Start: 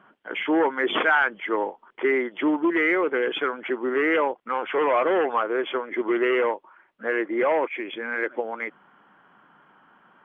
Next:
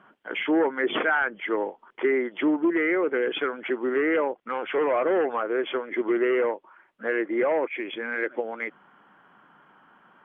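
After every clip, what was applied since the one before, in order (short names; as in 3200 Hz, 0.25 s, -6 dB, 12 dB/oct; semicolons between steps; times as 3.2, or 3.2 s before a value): treble ducked by the level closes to 1900 Hz, closed at -19 dBFS; dynamic EQ 1000 Hz, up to -6 dB, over -38 dBFS, Q 1.7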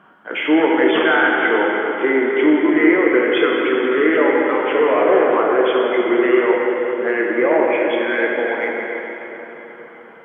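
plate-style reverb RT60 4.2 s, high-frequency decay 0.8×, DRR -3 dB; gain +5 dB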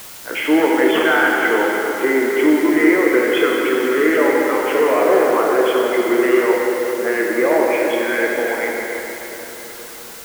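requantised 6-bit, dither triangular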